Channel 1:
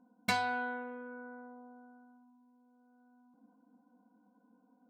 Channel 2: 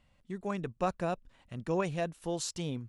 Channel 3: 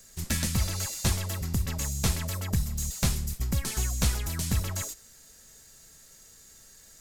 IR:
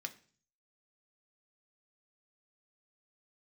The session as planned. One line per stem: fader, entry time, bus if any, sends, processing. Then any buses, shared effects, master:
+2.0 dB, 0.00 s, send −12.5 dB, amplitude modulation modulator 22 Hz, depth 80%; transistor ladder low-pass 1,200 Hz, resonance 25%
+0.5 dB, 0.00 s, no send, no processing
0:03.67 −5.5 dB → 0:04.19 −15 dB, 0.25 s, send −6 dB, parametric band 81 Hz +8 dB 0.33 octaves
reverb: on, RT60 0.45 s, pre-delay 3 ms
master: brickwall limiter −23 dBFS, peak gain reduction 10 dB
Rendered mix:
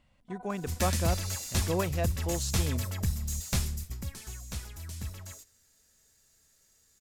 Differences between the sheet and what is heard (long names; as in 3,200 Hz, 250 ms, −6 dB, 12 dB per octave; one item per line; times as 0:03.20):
stem 1 +2.0 dB → −7.0 dB
stem 3: entry 0.25 s → 0.50 s
master: missing brickwall limiter −23 dBFS, peak gain reduction 10 dB